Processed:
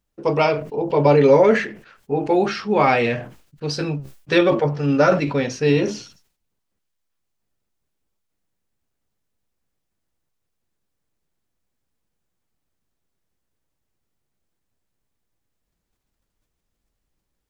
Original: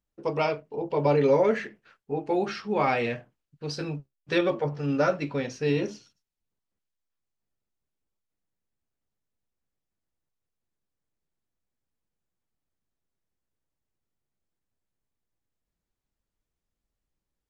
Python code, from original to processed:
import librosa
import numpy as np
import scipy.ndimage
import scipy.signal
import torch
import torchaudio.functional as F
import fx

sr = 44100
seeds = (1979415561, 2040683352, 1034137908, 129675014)

y = fx.sustainer(x, sr, db_per_s=110.0)
y = y * librosa.db_to_amplitude(8.0)